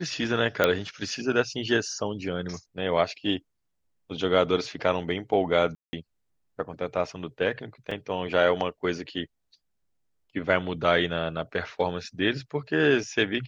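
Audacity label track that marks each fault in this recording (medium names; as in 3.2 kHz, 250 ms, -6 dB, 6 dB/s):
0.640000	0.640000	pop -7 dBFS
5.750000	5.930000	dropout 180 ms
7.910000	7.910000	dropout 4.2 ms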